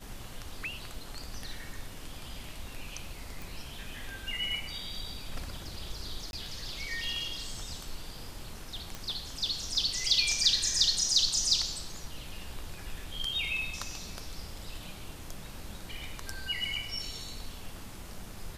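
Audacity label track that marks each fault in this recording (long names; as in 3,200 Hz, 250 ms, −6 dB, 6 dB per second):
3.420000	3.420000	click
6.310000	6.330000	drop-out 21 ms
8.950000	8.950000	click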